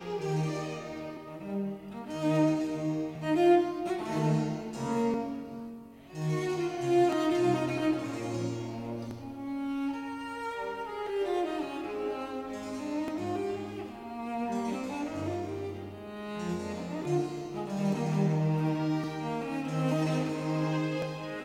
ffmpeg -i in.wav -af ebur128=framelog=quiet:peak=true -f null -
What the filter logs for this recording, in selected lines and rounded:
Integrated loudness:
  I:         -32.0 LUFS
  Threshold: -42.1 LUFS
Loudness range:
  LRA:         6.3 LU
  Threshold: -52.0 LUFS
  LRA low:   -35.5 LUFS
  LRA high:  -29.2 LUFS
True peak:
  Peak:      -13.1 dBFS